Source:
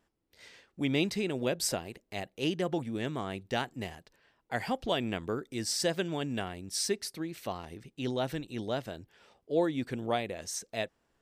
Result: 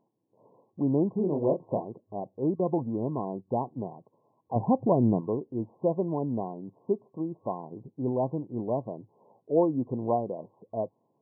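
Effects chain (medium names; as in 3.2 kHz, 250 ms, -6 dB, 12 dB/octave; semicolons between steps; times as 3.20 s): 1.15–1.85 s: doubling 27 ms -5 dB; 2.55–3.48 s: gate -39 dBFS, range -12 dB; 4.56–5.21 s: bass shelf 290 Hz +11.5 dB; FFT band-pass 100–1100 Hz; trim +4.5 dB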